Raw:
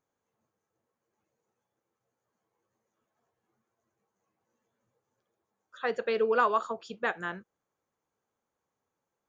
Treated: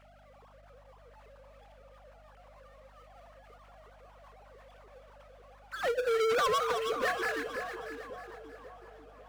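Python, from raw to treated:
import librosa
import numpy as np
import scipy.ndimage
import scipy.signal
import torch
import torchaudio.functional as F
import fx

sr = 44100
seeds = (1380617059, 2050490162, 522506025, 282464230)

p1 = fx.sine_speech(x, sr)
p2 = fx.power_curve(p1, sr, exponent=0.5)
p3 = fx.add_hum(p2, sr, base_hz=50, snr_db=26)
p4 = np.clip(p3, -10.0 ** (-23.0 / 20.0), 10.0 ** (-23.0 / 20.0))
p5 = p4 + fx.echo_split(p4, sr, split_hz=1100.0, low_ms=542, high_ms=317, feedback_pct=52, wet_db=-7.0, dry=0)
y = p5 * 10.0 ** (-3.5 / 20.0)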